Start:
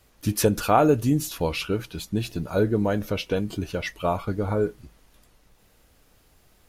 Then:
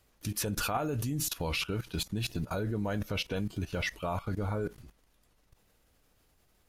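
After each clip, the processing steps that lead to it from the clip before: dynamic EQ 390 Hz, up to -6 dB, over -34 dBFS, Q 0.74; level quantiser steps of 18 dB; gain +4 dB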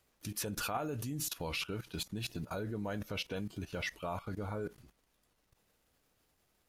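low shelf 85 Hz -8.5 dB; crackle 130/s -61 dBFS; gain -4.5 dB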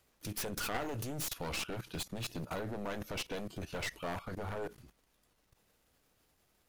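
one-sided fold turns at -38 dBFS; gain +2 dB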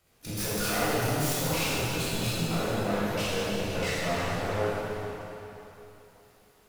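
reverb RT60 3.3 s, pre-delay 12 ms, DRR -10.5 dB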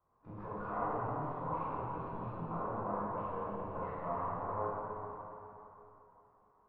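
ladder low-pass 1100 Hz, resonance 80%

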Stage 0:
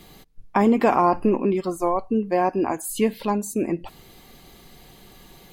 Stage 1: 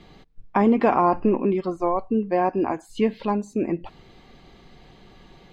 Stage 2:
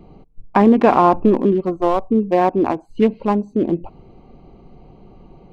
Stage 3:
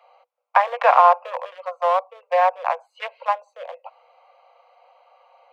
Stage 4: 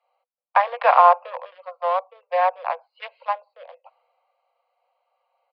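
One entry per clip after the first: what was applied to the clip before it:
air absorption 170 m
Wiener smoothing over 25 samples; gain +6.5 dB
Chebyshev high-pass 490 Hz, order 10; bell 1600 Hz +9.5 dB 2.4 oct; gain -5 dB
downsampling 11025 Hz; three-band expander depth 40%; gain -3 dB

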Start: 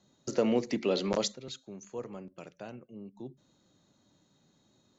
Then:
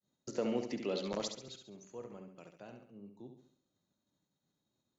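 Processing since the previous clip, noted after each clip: expander -60 dBFS; on a send: flutter echo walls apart 11.8 m, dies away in 0.57 s; on the sum: gain -8 dB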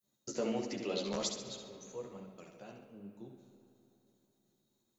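high shelf 6500 Hz +12 dB; chorus voices 2, 1.3 Hz, delay 12 ms, depth 3 ms; on a send at -10 dB: reverb RT60 3.3 s, pre-delay 40 ms; on the sum: gain +3 dB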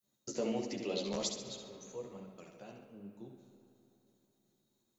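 dynamic EQ 1400 Hz, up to -6 dB, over -59 dBFS, Q 1.9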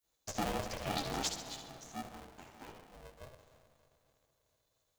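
HPF 280 Hz 12 dB/oct; polarity switched at an audio rate 260 Hz; gain +1 dB

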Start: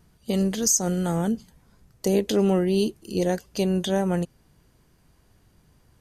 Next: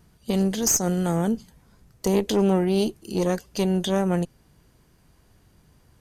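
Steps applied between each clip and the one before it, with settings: one diode to ground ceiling -20.5 dBFS; gain +2 dB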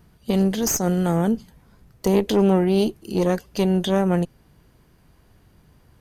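bell 7300 Hz -6.5 dB 1.3 oct; gain +3 dB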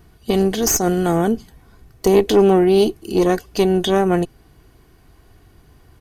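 comb 2.7 ms, depth 44%; gain +4.5 dB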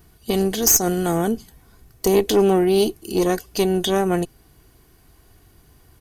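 high shelf 5600 Hz +11 dB; gain -3.5 dB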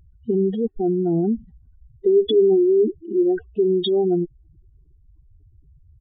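spectral contrast raised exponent 3.7; downsampling 8000 Hz; gain +1.5 dB

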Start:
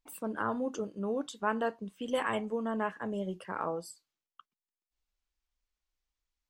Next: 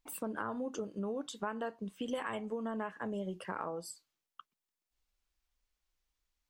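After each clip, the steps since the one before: compressor 5:1, threshold -38 dBFS, peak gain reduction 12.5 dB; gain +3 dB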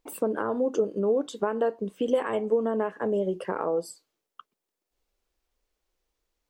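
bell 440 Hz +13 dB 1.5 oct; gain +3 dB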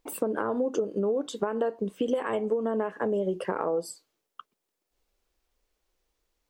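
compressor, threshold -26 dBFS, peak gain reduction 8 dB; gain +2.5 dB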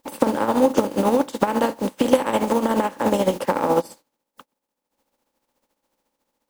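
spectral contrast lowered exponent 0.38; tremolo 14 Hz, depth 56%; small resonant body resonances 260/530/840 Hz, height 16 dB, ringing for 25 ms

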